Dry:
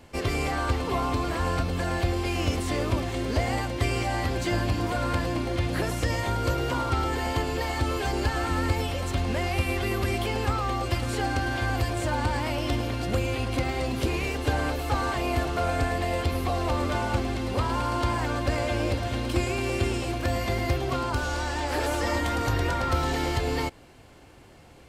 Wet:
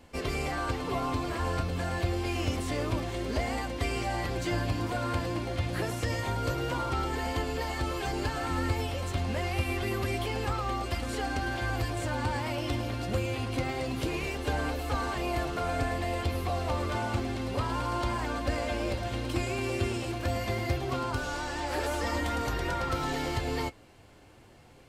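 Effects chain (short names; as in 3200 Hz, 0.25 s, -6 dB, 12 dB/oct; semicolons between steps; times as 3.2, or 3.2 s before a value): flange 0.27 Hz, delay 3.8 ms, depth 6.4 ms, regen -51%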